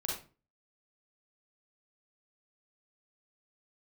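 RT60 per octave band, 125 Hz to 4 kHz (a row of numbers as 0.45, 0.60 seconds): 0.50, 0.45, 0.35, 0.35, 0.30, 0.25 seconds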